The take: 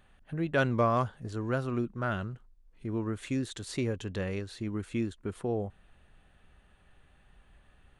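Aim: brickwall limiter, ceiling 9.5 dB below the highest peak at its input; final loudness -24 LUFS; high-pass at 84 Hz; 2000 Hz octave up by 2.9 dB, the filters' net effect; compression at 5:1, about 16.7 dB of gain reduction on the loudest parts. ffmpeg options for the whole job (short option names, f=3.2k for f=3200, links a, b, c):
-af "highpass=84,equalizer=f=2k:t=o:g=4.5,acompressor=threshold=-40dB:ratio=5,volume=23dB,alimiter=limit=-13.5dB:level=0:latency=1"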